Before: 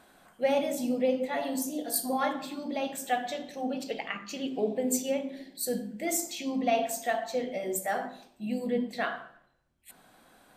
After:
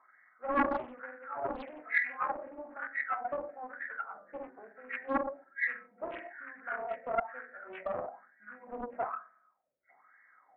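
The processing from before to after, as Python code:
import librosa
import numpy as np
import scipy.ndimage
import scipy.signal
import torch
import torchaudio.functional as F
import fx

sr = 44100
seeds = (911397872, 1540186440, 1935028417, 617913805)

y = fx.freq_compress(x, sr, knee_hz=1200.0, ratio=4.0)
y = fx.room_shoebox(y, sr, seeds[0], volume_m3=44.0, walls='mixed', distance_m=0.35)
y = fx.wah_lfo(y, sr, hz=1.1, low_hz=530.0, high_hz=1800.0, q=7.4)
y = fx.dynamic_eq(y, sr, hz=250.0, q=1.5, threshold_db=-55.0, ratio=4.0, max_db=3)
y = fx.doppler_dist(y, sr, depth_ms=0.94)
y = F.gain(torch.from_numpy(y), 2.5).numpy()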